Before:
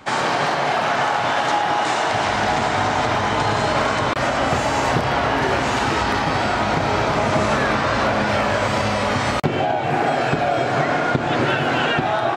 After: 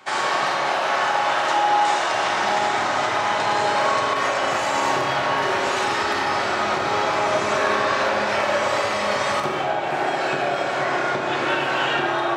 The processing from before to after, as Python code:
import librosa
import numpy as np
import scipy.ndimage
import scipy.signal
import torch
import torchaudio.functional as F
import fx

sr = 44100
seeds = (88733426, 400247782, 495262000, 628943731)

y = fx.highpass(x, sr, hz=700.0, slope=6)
y = fx.rev_fdn(y, sr, rt60_s=1.9, lf_ratio=1.3, hf_ratio=0.55, size_ms=16.0, drr_db=0.0)
y = y * librosa.db_to_amplitude(-2.5)